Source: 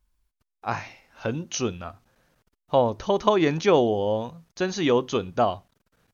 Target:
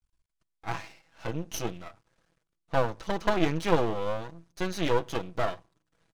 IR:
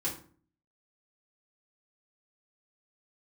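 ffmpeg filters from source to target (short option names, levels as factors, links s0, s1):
-filter_complex "[0:a]aecho=1:1:6.1:0.64,aresample=22050,aresample=44100,asplit=2[s0][s1];[1:a]atrim=start_sample=2205[s2];[s1][s2]afir=irnorm=-1:irlink=0,volume=0.0473[s3];[s0][s3]amix=inputs=2:normalize=0,aeval=exprs='max(val(0),0)':c=same,volume=0.668"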